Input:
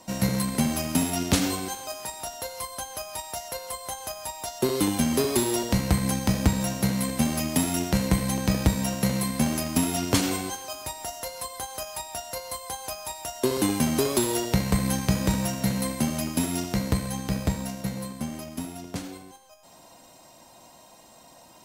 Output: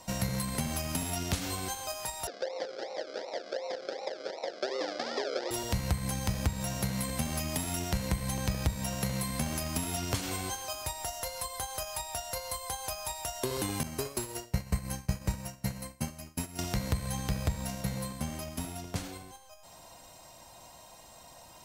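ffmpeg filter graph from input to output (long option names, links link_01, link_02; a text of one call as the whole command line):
ffmpeg -i in.wav -filter_complex "[0:a]asettb=1/sr,asplit=3[link_01][link_02][link_03];[link_01]atrim=end=2.274[link_04];[link_02]atrim=start=2.27:end=5.51,asetpts=PTS-STARTPTS,afade=type=in:duration=0.004:curve=qsin,afade=type=out:start_time=3.236:duration=0.004:curve=qsin,acrusher=samples=38:mix=1:aa=0.000001:lfo=1:lforange=22.8:lforate=2.7,highpass=frequency=330:width=0.5412,highpass=frequency=330:width=1.3066,equalizer=frequency=530:width_type=q:width=4:gain=9,equalizer=frequency=1100:width_type=q:width=4:gain=-8,equalizer=frequency=2600:width_type=q:width=4:gain=-9,equalizer=frequency=5000:width_type=q:width=4:gain=9,lowpass=frequency=5500:width=0.5412,lowpass=frequency=5500:width=1.3066[link_05];[link_03]atrim=start=5.506[link_06];[link_04][link_05]acrossfade=duration=0.004:curve1=hsin:curve2=qsin[link_07];[link_07][link_06]acrossfade=duration=0.004:curve1=qsin:curve2=hsin,asettb=1/sr,asplit=3[link_08][link_09][link_10];[link_08]atrim=end=13.834[link_11];[link_09]atrim=start=13.83:end=16.59,asetpts=PTS-STARTPTS,afade=type=in:duration=0.004:curve=qsin,afade=type=out:start_time=2.756:duration=0.004:curve=qsin,agate=range=-33dB:threshold=-19dB:ratio=3:release=100:detection=peak,bandreject=frequency=3500:width=5.5[link_12];[link_10]atrim=start=16.586[link_13];[link_11][link_12]acrossfade=duration=0.004:curve1=hsin:curve2=qsin[link_14];[link_14][link_13]acrossfade=duration=0.004:curve1=qsin:curve2=hsin,equalizer=frequency=250:width_type=o:width=1.7:gain=-11.5,acompressor=threshold=-32dB:ratio=6,lowshelf=frequency=340:gain=7.5" out.wav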